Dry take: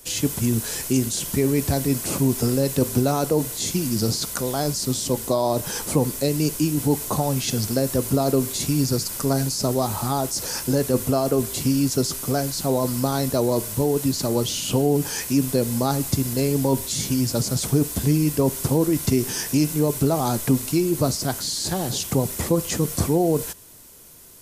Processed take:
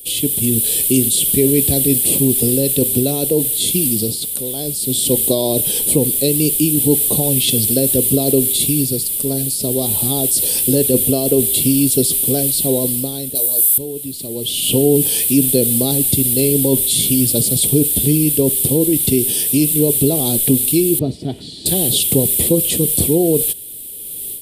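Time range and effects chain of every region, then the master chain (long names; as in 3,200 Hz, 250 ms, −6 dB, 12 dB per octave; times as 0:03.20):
0:13.35–0:13.78: RIAA equalisation recording + double-tracking delay 15 ms −2.5 dB
0:20.99–0:21.66: head-to-tape spacing loss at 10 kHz 30 dB + notch comb filter 530 Hz
whole clip: drawn EQ curve 110 Hz 0 dB, 450 Hz +5 dB, 1,300 Hz −19 dB, 3,400 Hz +13 dB, 6,300 Hz −8 dB, 8,900 Hz +14 dB; automatic gain control; level −1 dB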